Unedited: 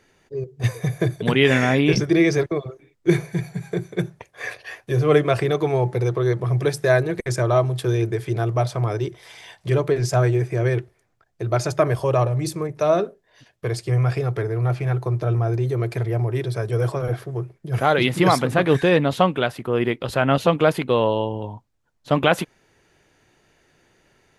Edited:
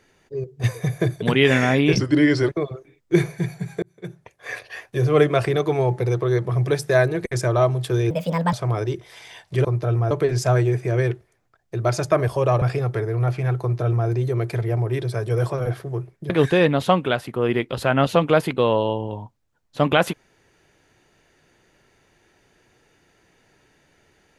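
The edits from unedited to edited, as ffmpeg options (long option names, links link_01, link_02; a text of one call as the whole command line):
ffmpeg -i in.wav -filter_complex "[0:a]asplit=10[link_01][link_02][link_03][link_04][link_05][link_06][link_07][link_08][link_09][link_10];[link_01]atrim=end=1.994[link_11];[link_02]atrim=start=1.99:end=2.43,asetpts=PTS-STARTPTS,asetrate=39249,aresample=44100,atrim=end_sample=21802,asetpts=PTS-STARTPTS[link_12];[link_03]atrim=start=2.426:end=3.77,asetpts=PTS-STARTPTS,afade=type=out:start_time=1.34:duration=0.004:curve=hsin[link_13];[link_04]atrim=start=3.77:end=8.054,asetpts=PTS-STARTPTS,afade=type=in:duration=0.79[link_14];[link_05]atrim=start=8.05:end=8.66,asetpts=PTS-STARTPTS,asetrate=63504,aresample=44100,atrim=end_sample=18681,asetpts=PTS-STARTPTS[link_15];[link_06]atrim=start=8.656:end=9.782[link_16];[link_07]atrim=start=15.038:end=15.502[link_17];[link_08]atrim=start=9.778:end=12.292[link_18];[link_09]atrim=start=14.038:end=17.722[link_19];[link_10]atrim=start=18.608[link_20];[link_11][link_12]acrossfade=duration=0.004:curve1=hsin:curve2=hsin[link_21];[link_13][link_14]concat=n=2:v=0:a=1[link_22];[link_21][link_22]acrossfade=duration=0.004:curve1=hsin:curve2=hsin[link_23];[link_23][link_15]acrossfade=duration=0.004:curve1=hsin:curve2=hsin[link_24];[link_24][link_16]acrossfade=duration=0.004:curve1=hsin:curve2=hsin[link_25];[link_25][link_17]acrossfade=duration=0.004:curve1=hsin:curve2=hsin[link_26];[link_26][link_18]acrossfade=duration=0.004:curve1=hsin:curve2=hsin[link_27];[link_27][link_19]acrossfade=duration=0.004:curve1=hsin:curve2=hsin[link_28];[link_28][link_20]acrossfade=duration=0.004:curve1=hsin:curve2=hsin" out.wav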